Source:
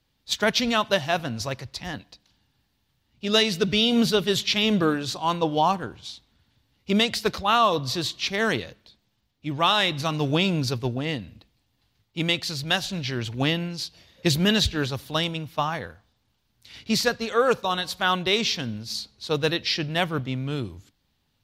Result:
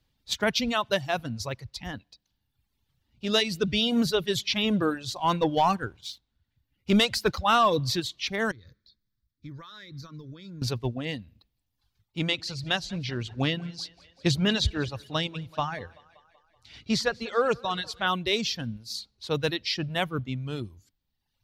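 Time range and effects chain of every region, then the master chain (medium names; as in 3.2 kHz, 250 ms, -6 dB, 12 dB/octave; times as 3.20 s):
5.16–8.00 s: peaking EQ 1.5 kHz +4 dB 0.2 oct + waveshaping leveller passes 1
8.51–10.62 s: compression 16:1, threshold -33 dBFS + static phaser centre 2.8 kHz, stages 6
12.19–18.07 s: low-pass 7.3 kHz + two-band feedback delay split 360 Hz, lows 109 ms, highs 190 ms, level -14 dB
whole clip: reverb removal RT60 1 s; bass shelf 120 Hz +7 dB; trim -3.5 dB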